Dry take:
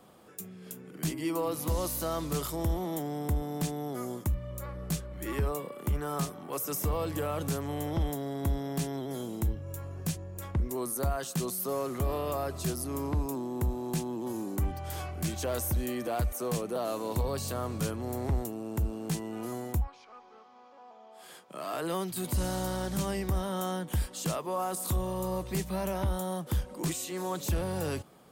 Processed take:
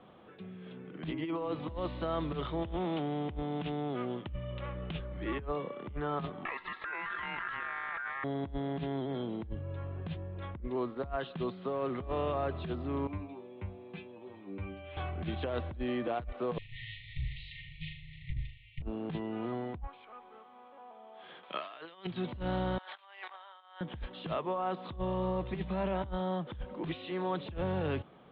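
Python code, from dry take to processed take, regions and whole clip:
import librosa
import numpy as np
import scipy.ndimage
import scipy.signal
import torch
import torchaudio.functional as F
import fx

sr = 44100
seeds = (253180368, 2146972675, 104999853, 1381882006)

y = fx.chain(x, sr, fx.self_delay(depth_ms=0.12),
    fx.highpass(hz=49.0, slope=12),
    fx.peak_eq(hz=2800.0, db=8.0, octaves=0.57), at=(2.62, 5.0))
y = fx.chain(y, sr, fx.ring_mod(carrier_hz=1500.0),
    fx.env_flatten(amount_pct=100), at=(6.45, 8.24))
y = fx.chain(y, sr, fx.highpass(hz=48.0, slope=12),
    fx.peak_eq(hz=2400.0, db=13.0, octaves=0.35),
    fx.stiff_resonator(f0_hz=95.0, decay_s=0.36, stiffness=0.002), at=(13.07, 14.97))
y = fx.chain(y, sr, fx.lower_of_two(delay_ms=4.8),
    fx.brickwall_bandstop(low_hz=150.0, high_hz=1800.0),
    fx.room_flutter(wall_m=6.7, rt60_s=0.46), at=(16.58, 18.82))
y = fx.chain(y, sr, fx.tilt_eq(slope=4.5),
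    fx.over_compress(threshold_db=-40.0, ratio=-0.5), at=(21.43, 22.07))
y = fx.chain(y, sr, fx.highpass(hz=840.0, slope=24),
    fx.over_compress(threshold_db=-48.0, ratio=-0.5), at=(22.78, 23.81))
y = fx.over_compress(y, sr, threshold_db=-32.0, ratio=-0.5)
y = scipy.signal.sosfilt(scipy.signal.butter(12, 3700.0, 'lowpass', fs=sr, output='sos'), y)
y = y * librosa.db_to_amplitude(-1.5)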